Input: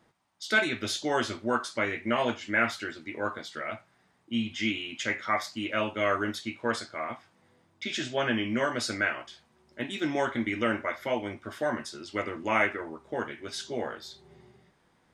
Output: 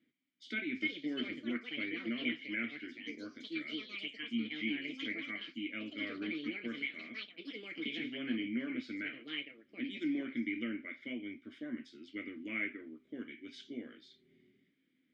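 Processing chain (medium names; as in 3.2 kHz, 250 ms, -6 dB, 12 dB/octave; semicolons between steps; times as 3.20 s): ever faster or slower copies 454 ms, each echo +6 st, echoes 2; low-pass that closes with the level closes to 2.7 kHz, closed at -24 dBFS; vowel filter i; trim +2 dB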